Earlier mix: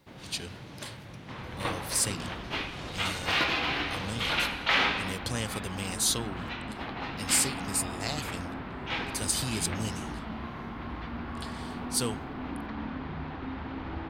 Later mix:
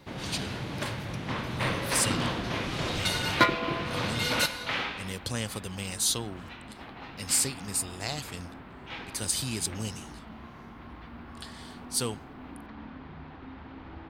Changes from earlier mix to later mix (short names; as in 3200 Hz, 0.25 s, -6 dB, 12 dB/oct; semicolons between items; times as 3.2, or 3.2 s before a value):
first sound +9.5 dB; second sound -7.5 dB